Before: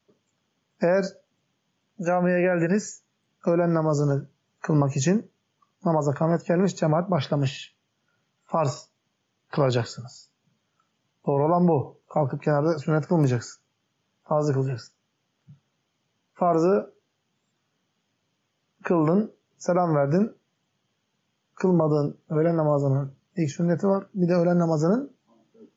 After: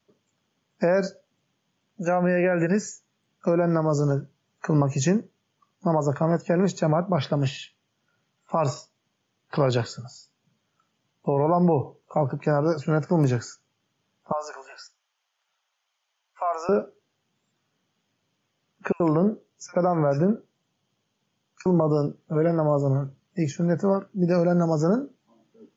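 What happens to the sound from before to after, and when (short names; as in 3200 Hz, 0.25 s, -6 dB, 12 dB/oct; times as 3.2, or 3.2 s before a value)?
14.32–16.69 HPF 720 Hz 24 dB/oct
18.92–21.66 bands offset in time highs, lows 80 ms, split 1800 Hz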